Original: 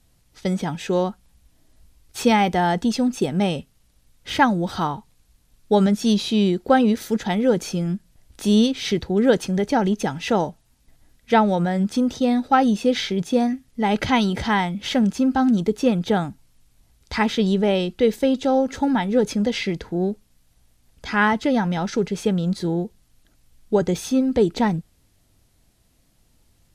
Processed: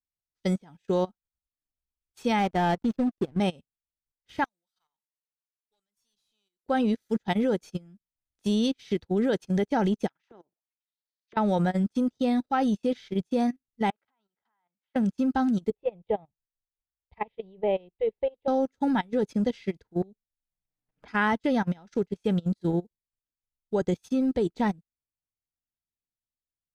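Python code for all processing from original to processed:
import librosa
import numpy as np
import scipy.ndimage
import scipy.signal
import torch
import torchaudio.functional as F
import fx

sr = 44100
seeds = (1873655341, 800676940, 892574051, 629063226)

y = fx.chain(x, sr, fx.lowpass(hz=3500.0, slope=6),
    fx.peak_eq(hz=86.0, db=2.0, octaves=2.0),
    fx.backlash(play_db=-24.0), at=(2.39, 3.4))
y = fx.chain(y, sr, fx.differentiator(),
    fx.tube_stage(drive_db=32.0, bias=0.55),
    fx.sustainer(db_per_s=130.0), at=(4.44, 6.64))
y = fx.chain(y, sr, fx.level_steps(step_db=10),
    fx.auto_wah(base_hz=350.0, top_hz=4800.0, q=4.1, full_db=-23.0, direction='down'),
    fx.spectral_comp(ratio=2.0), at=(10.08, 11.37))
y = fx.chain(y, sr, fx.bandpass_q(hz=1100.0, q=1.4),
    fx.level_steps(step_db=18), at=(13.9, 14.96))
y = fx.chain(y, sr, fx.lowpass(hz=2500.0, slope=24),
    fx.fixed_phaser(hz=610.0, stages=4), at=(15.7, 18.48))
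y = fx.chain(y, sr, fx.low_shelf(hz=72.0, db=3.0),
    fx.env_flanger(rest_ms=7.5, full_db=-22.0),
    fx.band_squash(depth_pct=100), at=(20.02, 21.08))
y = fx.level_steps(y, sr, step_db=11)
y = fx.upward_expand(y, sr, threshold_db=-45.0, expansion=2.5)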